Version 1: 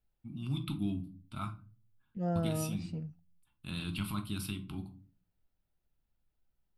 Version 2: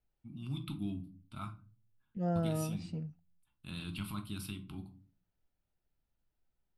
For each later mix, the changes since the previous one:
first voice -4.0 dB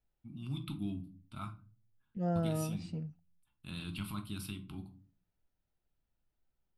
none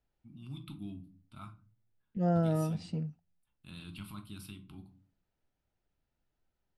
first voice -5.0 dB; second voice +4.5 dB

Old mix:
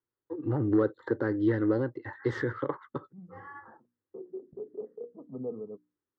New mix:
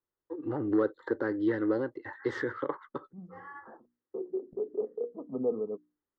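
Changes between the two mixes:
second voice +8.0 dB; master: add bell 120 Hz -11.5 dB 1.4 oct

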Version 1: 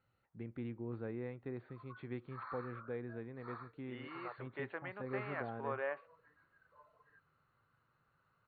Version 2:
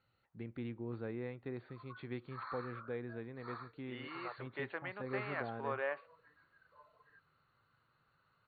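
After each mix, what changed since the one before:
master: remove air absorption 290 m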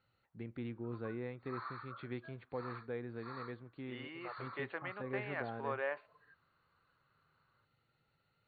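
background: entry -0.85 s

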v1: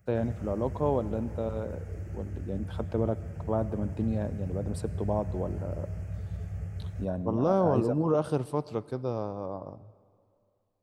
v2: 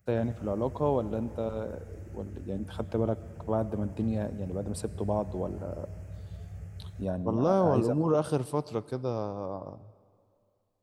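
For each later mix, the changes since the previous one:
background -6.0 dB; master: add high shelf 3900 Hz +6.5 dB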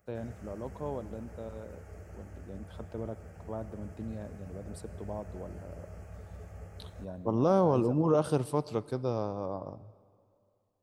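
first voice -10.0 dB; background: add graphic EQ 125/250/500/1000 Hz -11/+4/+6/+9 dB

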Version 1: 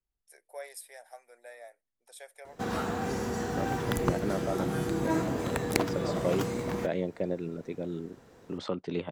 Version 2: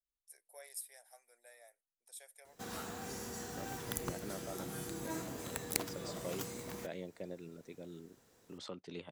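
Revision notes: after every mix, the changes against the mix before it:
master: add pre-emphasis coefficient 0.8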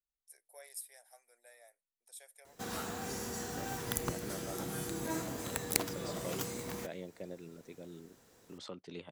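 background +4.0 dB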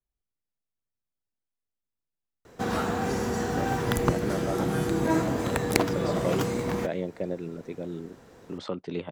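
first voice: muted; master: remove pre-emphasis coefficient 0.8

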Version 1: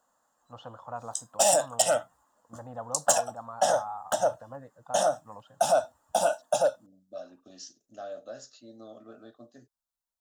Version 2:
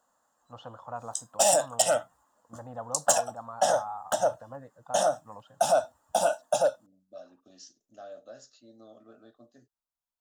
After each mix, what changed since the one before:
second voice -5.0 dB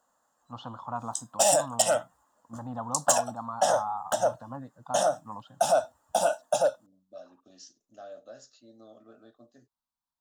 first voice: add graphic EQ 125/250/500/1000/2000/4000 Hz +4/+10/-8/+9/-5/+9 dB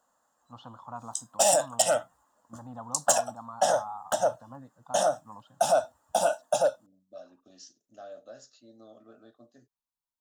first voice -6.0 dB

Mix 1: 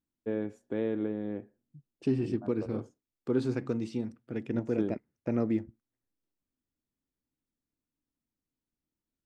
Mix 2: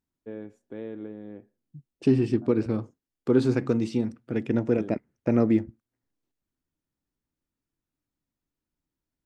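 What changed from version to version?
first voice -6.0 dB; second voice +7.5 dB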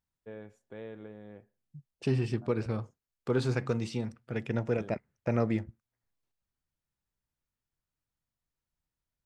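master: add bell 290 Hz -13.5 dB 1 oct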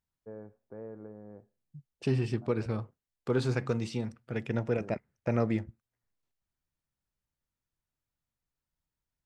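first voice: add LPF 1300 Hz 24 dB/oct

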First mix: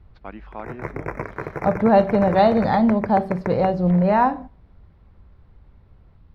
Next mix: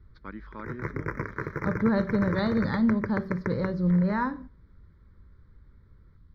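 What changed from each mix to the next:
second voice -4.0 dB; master: add fixed phaser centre 2700 Hz, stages 6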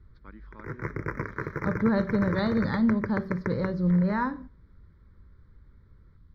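first voice -8.5 dB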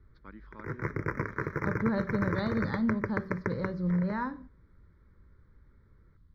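second voice -5.5 dB

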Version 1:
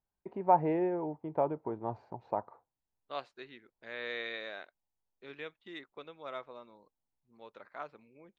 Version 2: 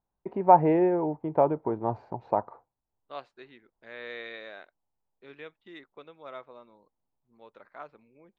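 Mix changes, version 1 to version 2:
first voice +8.0 dB; master: add high shelf 3100 Hz -6 dB

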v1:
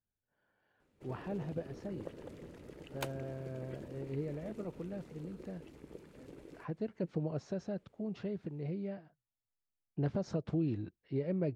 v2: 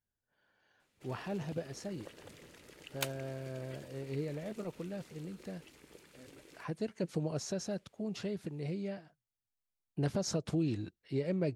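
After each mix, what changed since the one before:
speech: remove tape spacing loss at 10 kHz 30 dB; background: add tilt shelf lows -9.5 dB, about 1100 Hz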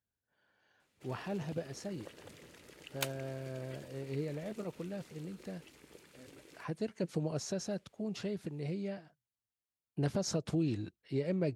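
master: add HPF 45 Hz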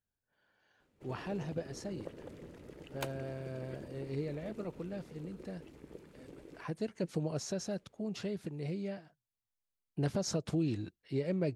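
background: add tilt shelf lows +9.5 dB, about 1100 Hz; master: remove HPF 45 Hz

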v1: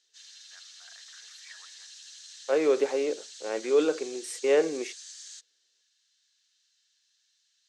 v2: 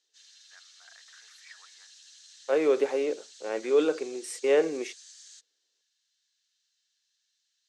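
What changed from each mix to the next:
background -5.5 dB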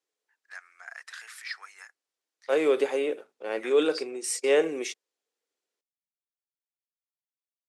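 first voice +10.5 dB; background: muted; master: add high shelf 2700 Hz +9.5 dB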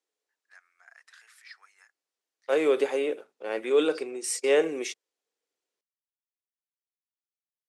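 first voice -11.5 dB

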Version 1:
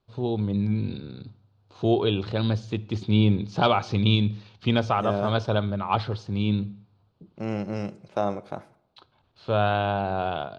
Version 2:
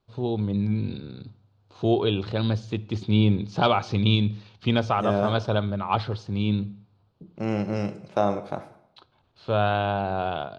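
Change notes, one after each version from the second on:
second voice: send +10.5 dB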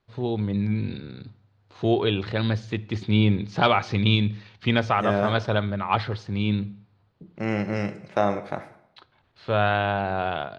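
master: add bell 1900 Hz +11.5 dB 0.6 oct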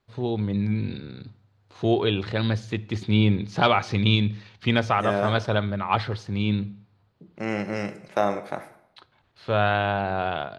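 second voice: add HPF 200 Hz 6 dB/oct; master: remove LPF 6000 Hz 12 dB/oct

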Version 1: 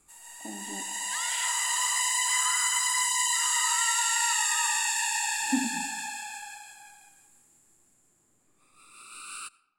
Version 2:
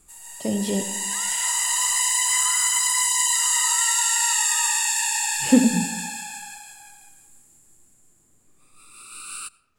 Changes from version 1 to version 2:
speech: remove double band-pass 490 Hz, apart 1.4 oct; first sound: remove LPF 1500 Hz 6 dB/oct; master: add tilt -2.5 dB/oct

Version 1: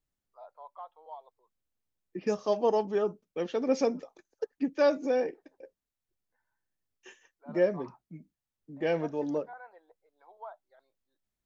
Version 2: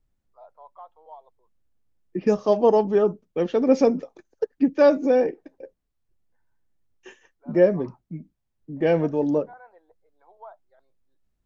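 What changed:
second voice +6.5 dB; master: add tilt -2 dB/oct

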